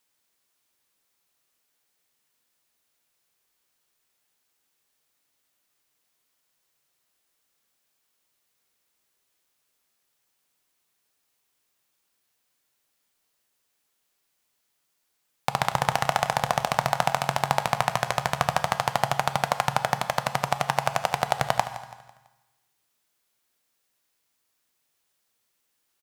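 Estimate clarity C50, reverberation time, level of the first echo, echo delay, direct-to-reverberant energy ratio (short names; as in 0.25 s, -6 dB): 10.5 dB, 1.2 s, -15.0 dB, 0.166 s, 8.5 dB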